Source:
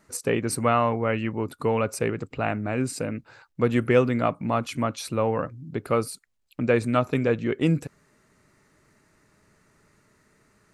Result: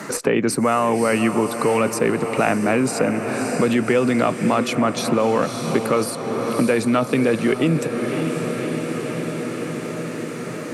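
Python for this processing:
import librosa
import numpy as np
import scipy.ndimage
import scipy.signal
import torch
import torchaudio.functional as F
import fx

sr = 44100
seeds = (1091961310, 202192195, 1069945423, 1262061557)

p1 = scipy.signal.sosfilt(scipy.signal.butter(4, 150.0, 'highpass', fs=sr, output='sos'), x)
p2 = fx.over_compress(p1, sr, threshold_db=-27.0, ratio=-1.0)
p3 = p1 + F.gain(torch.from_numpy(p2), 3.0).numpy()
p4 = fx.cheby_harmonics(p3, sr, harmonics=(2,), levels_db=(-28,), full_scale_db=-2.5)
p5 = p4 + fx.echo_diffused(p4, sr, ms=582, feedback_pct=65, wet_db=-11, dry=0)
y = fx.band_squash(p5, sr, depth_pct=70)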